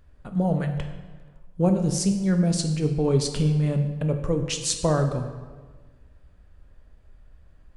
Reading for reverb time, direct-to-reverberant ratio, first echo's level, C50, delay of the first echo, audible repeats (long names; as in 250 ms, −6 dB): 1.4 s, 5.5 dB, no echo audible, 8.0 dB, no echo audible, no echo audible